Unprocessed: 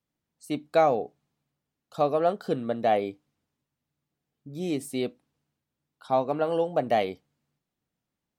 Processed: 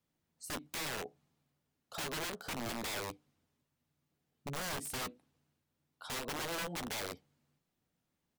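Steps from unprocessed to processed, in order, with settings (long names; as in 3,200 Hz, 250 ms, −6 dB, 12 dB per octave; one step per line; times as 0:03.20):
downward compressor 8 to 1, threshold −32 dBFS, peak gain reduction 15.5 dB
wrap-around overflow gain 35 dB
double-tracking delay 12 ms −13.5 dB
level +1 dB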